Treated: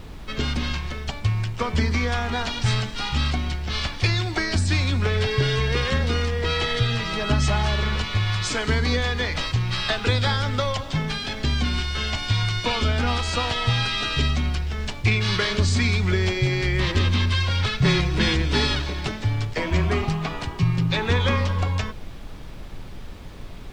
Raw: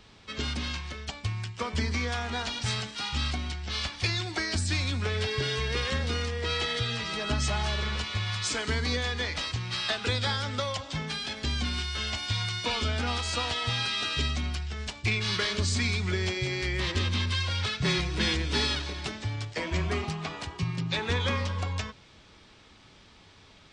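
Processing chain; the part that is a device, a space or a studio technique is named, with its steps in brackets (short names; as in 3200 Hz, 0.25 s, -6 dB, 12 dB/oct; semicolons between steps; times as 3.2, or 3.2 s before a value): car interior (bell 130 Hz +5 dB 0.58 oct; high shelf 3800 Hz -7 dB; brown noise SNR 12 dB); gain +7 dB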